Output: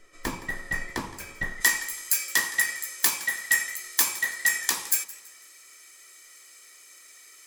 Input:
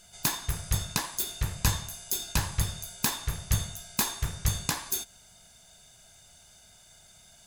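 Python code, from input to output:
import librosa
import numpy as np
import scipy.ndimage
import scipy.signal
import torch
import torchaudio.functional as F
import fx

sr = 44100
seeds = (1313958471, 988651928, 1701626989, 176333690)

y = fx.band_invert(x, sr, width_hz=2000)
y = fx.tilt_eq(y, sr, slope=fx.steps((0.0, -3.5), (1.6, 2.0)))
y = fx.echo_warbled(y, sr, ms=165, feedback_pct=41, rate_hz=2.8, cents=89, wet_db=-18.0)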